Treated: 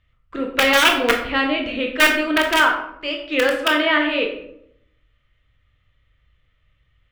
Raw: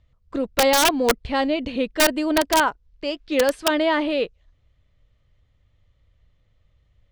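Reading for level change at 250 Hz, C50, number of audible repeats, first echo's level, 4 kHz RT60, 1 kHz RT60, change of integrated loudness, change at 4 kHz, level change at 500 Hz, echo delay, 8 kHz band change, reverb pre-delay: +0.5 dB, 6.5 dB, none, none, 0.40 s, 0.65 s, +3.0 dB, +4.5 dB, -0.5 dB, none, -4.0 dB, 17 ms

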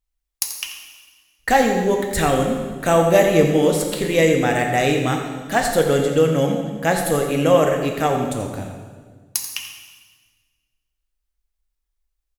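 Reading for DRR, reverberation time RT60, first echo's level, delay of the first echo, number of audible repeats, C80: 2.0 dB, 1.5 s, -11.5 dB, 86 ms, 1, 5.5 dB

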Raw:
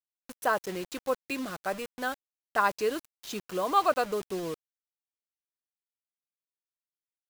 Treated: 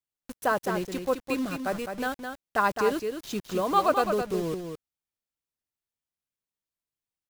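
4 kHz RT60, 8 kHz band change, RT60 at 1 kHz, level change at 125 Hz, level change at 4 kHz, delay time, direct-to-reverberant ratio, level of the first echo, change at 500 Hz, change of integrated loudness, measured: none, +1.0 dB, none, +8.0 dB, +1.0 dB, 0.211 s, none, -6.5 dB, +3.5 dB, +2.5 dB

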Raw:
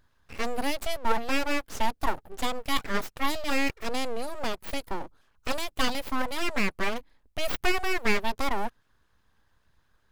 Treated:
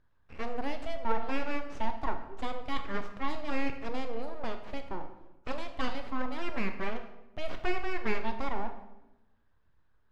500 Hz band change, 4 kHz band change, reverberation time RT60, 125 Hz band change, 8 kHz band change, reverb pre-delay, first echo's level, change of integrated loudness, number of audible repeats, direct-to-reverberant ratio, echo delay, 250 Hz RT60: -4.5 dB, -12.0 dB, 1.0 s, -2.5 dB, -20.0 dB, 21 ms, none, -6.5 dB, none, 6.5 dB, none, 1.3 s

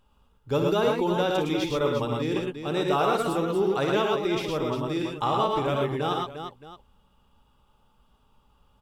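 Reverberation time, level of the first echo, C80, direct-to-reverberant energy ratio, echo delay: none, -8.0 dB, none, none, 58 ms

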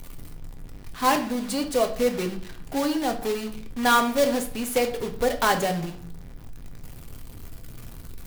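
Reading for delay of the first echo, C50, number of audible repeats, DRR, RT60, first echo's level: none, 12.0 dB, none, 4.0 dB, 0.55 s, none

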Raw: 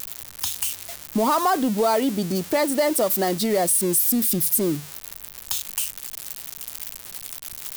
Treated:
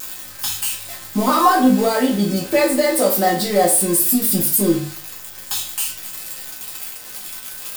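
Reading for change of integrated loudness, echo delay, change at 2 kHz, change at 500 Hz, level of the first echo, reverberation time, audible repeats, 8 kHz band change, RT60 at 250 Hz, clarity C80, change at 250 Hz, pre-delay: +5.0 dB, none, +6.5 dB, +4.0 dB, none, 0.45 s, none, +4.0 dB, 0.45 s, 11.0 dB, +6.0 dB, 4 ms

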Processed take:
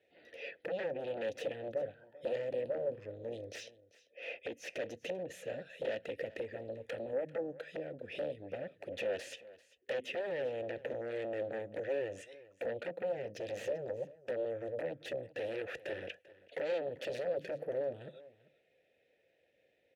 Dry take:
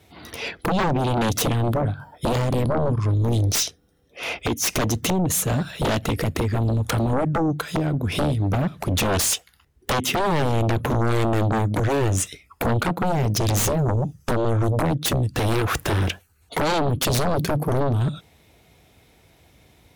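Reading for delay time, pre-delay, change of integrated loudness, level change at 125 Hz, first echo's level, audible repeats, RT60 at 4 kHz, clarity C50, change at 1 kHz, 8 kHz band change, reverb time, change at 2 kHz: 0.392 s, none, -17.0 dB, -33.0 dB, -19.5 dB, 1, none, none, -25.0 dB, -32.0 dB, none, -15.5 dB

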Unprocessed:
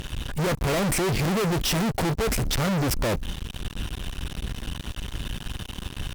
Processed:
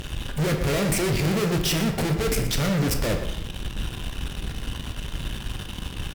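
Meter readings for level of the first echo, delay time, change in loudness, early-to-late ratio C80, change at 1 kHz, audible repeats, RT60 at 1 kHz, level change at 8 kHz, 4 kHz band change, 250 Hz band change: -12.5 dB, 0.118 s, +1.0 dB, 8.0 dB, -2.5 dB, 1, 1.0 s, +0.5 dB, +1.0 dB, +1.5 dB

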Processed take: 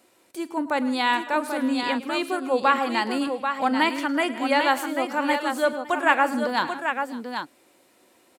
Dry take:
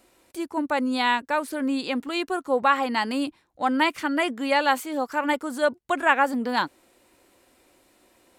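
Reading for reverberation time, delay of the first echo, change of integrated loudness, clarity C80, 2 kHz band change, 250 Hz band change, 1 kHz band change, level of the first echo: none, 43 ms, +0.5 dB, none, +1.0 dB, +1.0 dB, +1.0 dB, -18.5 dB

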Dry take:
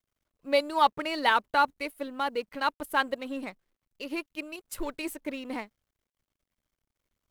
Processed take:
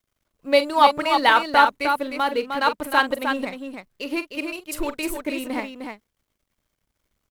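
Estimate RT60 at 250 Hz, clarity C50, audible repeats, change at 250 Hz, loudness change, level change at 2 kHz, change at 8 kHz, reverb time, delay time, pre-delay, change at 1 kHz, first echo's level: none, none, 2, +8.0 dB, +8.0 dB, +8.0 dB, +8.0 dB, none, 42 ms, none, +8.0 dB, -12.5 dB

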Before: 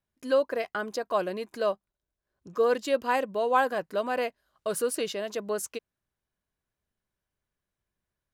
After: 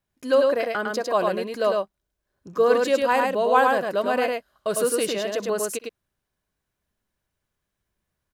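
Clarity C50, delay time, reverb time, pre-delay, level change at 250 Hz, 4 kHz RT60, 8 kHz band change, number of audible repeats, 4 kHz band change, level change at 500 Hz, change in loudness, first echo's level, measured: none, 63 ms, none, none, +6.5 dB, none, +6.5 dB, 2, +6.5 dB, +6.5 dB, +6.5 dB, -19.5 dB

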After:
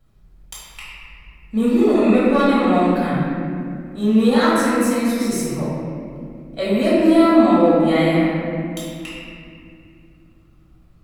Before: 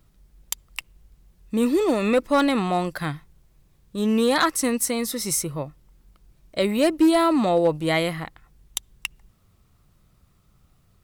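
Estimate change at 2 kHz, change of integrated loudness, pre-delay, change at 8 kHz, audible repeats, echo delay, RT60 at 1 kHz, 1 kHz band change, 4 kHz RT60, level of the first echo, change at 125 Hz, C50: +3.5 dB, +5.5 dB, 3 ms, -5.0 dB, none, none, 2.0 s, +4.5 dB, 1.5 s, none, +7.5 dB, -4.0 dB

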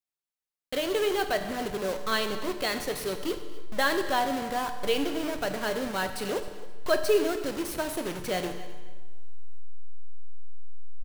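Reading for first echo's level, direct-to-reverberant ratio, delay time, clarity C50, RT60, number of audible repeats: -18.0 dB, 6.5 dB, 0.264 s, 8.5 dB, 1.3 s, 2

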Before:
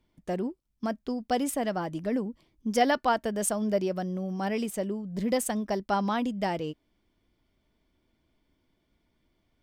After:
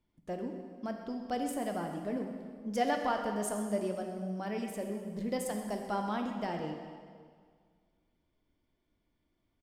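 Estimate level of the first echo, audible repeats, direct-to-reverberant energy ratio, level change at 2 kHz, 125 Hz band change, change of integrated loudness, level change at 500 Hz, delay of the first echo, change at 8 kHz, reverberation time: -13.5 dB, 1, 3.0 dB, -6.5 dB, -6.5 dB, -6.0 dB, -6.0 dB, 0.129 s, -9.0 dB, 1.9 s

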